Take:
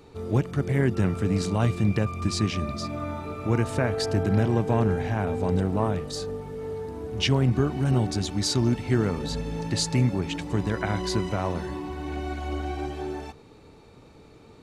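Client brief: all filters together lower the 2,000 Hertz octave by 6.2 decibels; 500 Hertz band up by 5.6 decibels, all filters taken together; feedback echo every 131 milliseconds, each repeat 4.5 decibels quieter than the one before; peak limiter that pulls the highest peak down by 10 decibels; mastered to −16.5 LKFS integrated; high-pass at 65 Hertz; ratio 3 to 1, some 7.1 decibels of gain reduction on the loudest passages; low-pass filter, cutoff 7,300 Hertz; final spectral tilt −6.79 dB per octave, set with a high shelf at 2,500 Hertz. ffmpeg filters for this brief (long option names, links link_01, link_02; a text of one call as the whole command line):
ffmpeg -i in.wav -af "highpass=65,lowpass=7300,equalizer=frequency=500:width_type=o:gain=7.5,equalizer=frequency=2000:width_type=o:gain=-6.5,highshelf=frequency=2500:gain=-5,acompressor=threshold=-25dB:ratio=3,alimiter=limit=-23.5dB:level=0:latency=1,aecho=1:1:131|262|393|524|655|786|917|1048|1179:0.596|0.357|0.214|0.129|0.0772|0.0463|0.0278|0.0167|0.01,volume=13.5dB" out.wav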